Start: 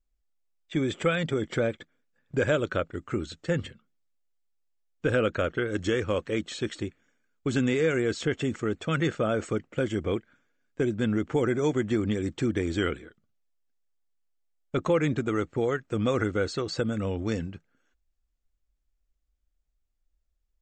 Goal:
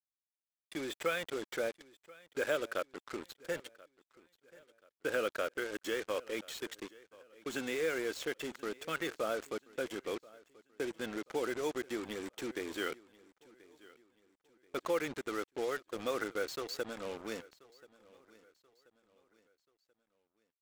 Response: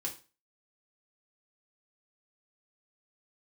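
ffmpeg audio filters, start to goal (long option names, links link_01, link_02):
-af "highpass=420,acrusher=bits=5:mix=0:aa=0.5,aecho=1:1:1033|2066|3099:0.0794|0.031|0.0121,volume=-6.5dB"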